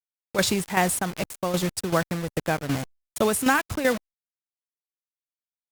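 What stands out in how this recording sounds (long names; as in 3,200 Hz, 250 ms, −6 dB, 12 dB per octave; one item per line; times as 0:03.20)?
a quantiser's noise floor 6 bits, dither none
tremolo saw down 2.6 Hz, depth 65%
Opus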